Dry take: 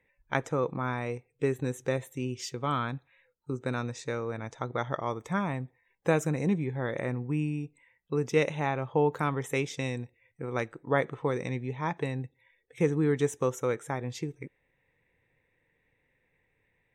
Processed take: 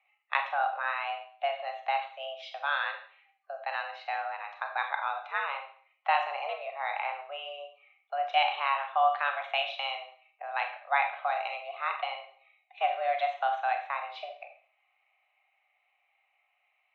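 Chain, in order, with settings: dynamic bell 3 kHz, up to +6 dB, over -50 dBFS, Q 1.5; mistuned SSB +280 Hz 380–3500 Hz; Schroeder reverb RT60 0.48 s, combs from 29 ms, DRR 4.5 dB

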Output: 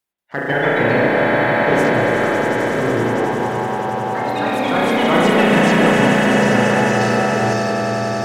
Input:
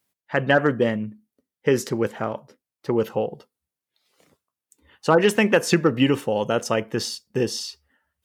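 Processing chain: coarse spectral quantiser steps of 30 dB; echo with a slow build-up 92 ms, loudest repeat 8, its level -8 dB; transient shaper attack +3 dB, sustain -4 dB; spring tank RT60 2.6 s, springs 34 ms, chirp 65 ms, DRR -5 dB; waveshaping leveller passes 1; reverse; upward compressor, threshold -25 dBFS; reverse; ever faster or slower copies 184 ms, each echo +2 st, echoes 3; trim -8.5 dB

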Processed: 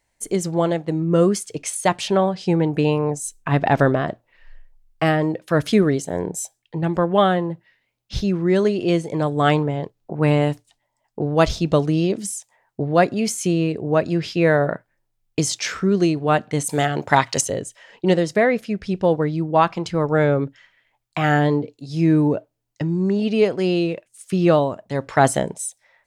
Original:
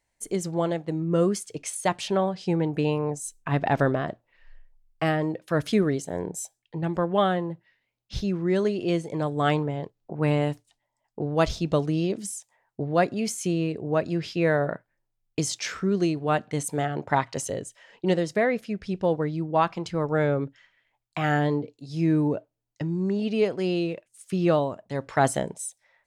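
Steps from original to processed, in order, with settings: 16.69–17.41 s: treble shelf 2.6 kHz +11.5 dB; trim +6 dB

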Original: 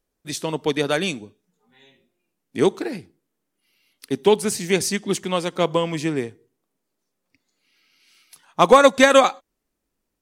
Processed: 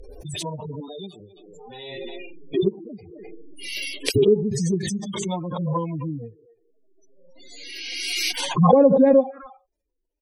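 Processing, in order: harmonic-percussive separation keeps harmonic; 0.80–1.20 s: static phaser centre 540 Hz, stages 6; 4.50–5.40 s: peaking EQ 8.6 kHz +10.5 dB 2.2 oct; speakerphone echo 260 ms, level -21 dB; spectral gate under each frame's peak -20 dB strong; touch-sensitive phaser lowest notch 220 Hz, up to 1.3 kHz, full sweep at -12.5 dBFS; low-pass that closes with the level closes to 650 Hz, closed at -19.5 dBFS; swell ahead of each attack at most 25 dB/s; trim +1.5 dB

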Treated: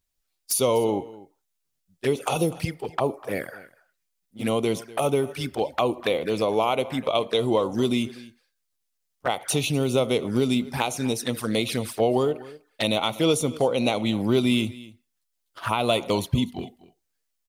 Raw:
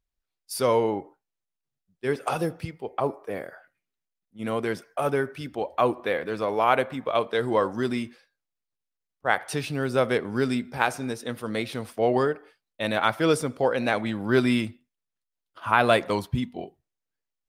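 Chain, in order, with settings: treble shelf 3.5 kHz +10 dB; compression 3:1, threshold -24 dBFS, peak gain reduction 9 dB; touch-sensitive flanger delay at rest 11.8 ms, full sweep at -26.5 dBFS; delay 247 ms -19.5 dB; trim +6.5 dB

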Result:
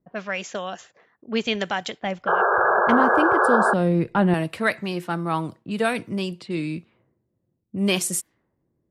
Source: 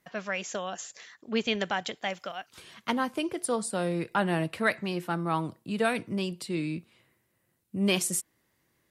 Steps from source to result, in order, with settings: level-controlled noise filter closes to 380 Hz, open at -28.5 dBFS; 2.02–4.34 s: tilt EQ -3 dB/octave; 2.27–3.74 s: painted sound noise 350–1700 Hz -23 dBFS; trim +4 dB

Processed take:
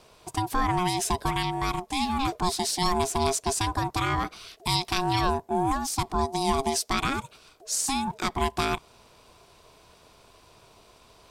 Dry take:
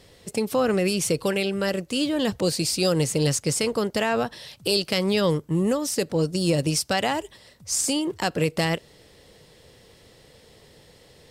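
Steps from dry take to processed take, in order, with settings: ring modulator 540 Hz

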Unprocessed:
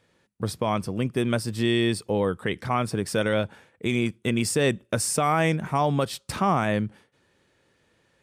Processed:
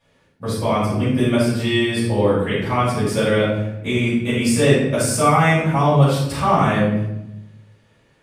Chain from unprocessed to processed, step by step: simulated room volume 280 m³, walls mixed, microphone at 6.3 m; trim -8.5 dB

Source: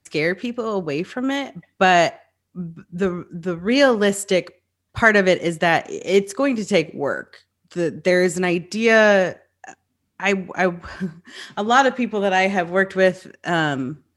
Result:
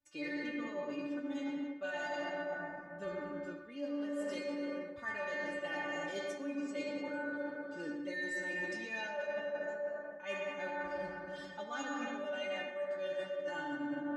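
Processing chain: treble shelf 5.7 kHz -11.5 dB; reverberation RT60 2.7 s, pre-delay 53 ms, DRR -1.5 dB; dynamic bell 7.6 kHz, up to +5 dB, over -41 dBFS, Q 0.97; inharmonic resonator 290 Hz, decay 0.33 s, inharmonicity 0.002; reverse; compression 16:1, threshold -37 dBFS, peak gain reduction 19.5 dB; reverse; trim +1.5 dB

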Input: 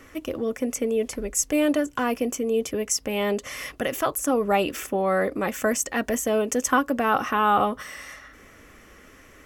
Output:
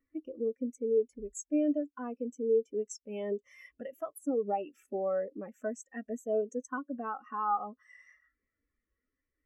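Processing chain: treble shelf 2.2 kHz +5 dB; compression 2.5:1, threshold -34 dBFS, peak gain reduction 13 dB; spectral contrast expander 2.5:1; trim -4 dB

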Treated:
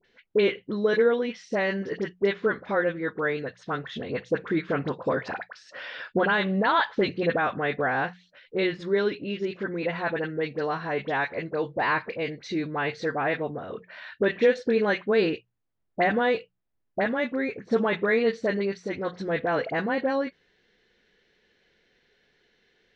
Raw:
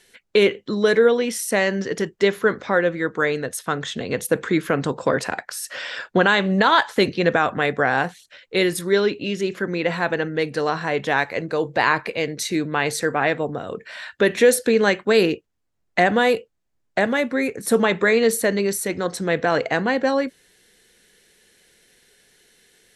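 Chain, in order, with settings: Bessel low-pass 3.1 kHz, order 8; hum notches 60/120/180 Hz; phase dispersion highs, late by 46 ms, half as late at 1.3 kHz; trim -5.5 dB

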